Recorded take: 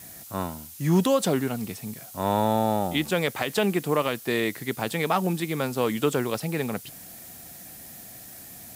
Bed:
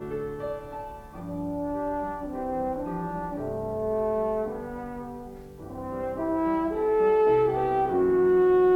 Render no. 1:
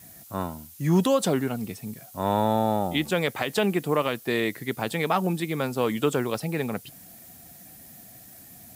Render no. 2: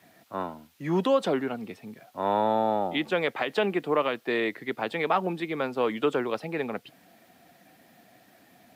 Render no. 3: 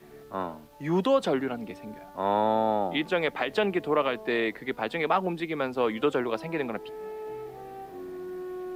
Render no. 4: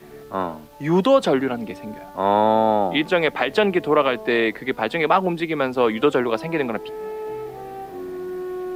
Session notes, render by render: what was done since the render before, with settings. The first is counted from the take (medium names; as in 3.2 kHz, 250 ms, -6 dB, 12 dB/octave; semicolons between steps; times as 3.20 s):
noise reduction 6 dB, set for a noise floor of -44 dBFS
high-pass 82 Hz; three-band isolator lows -14 dB, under 240 Hz, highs -20 dB, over 3.9 kHz
add bed -17 dB
trim +7.5 dB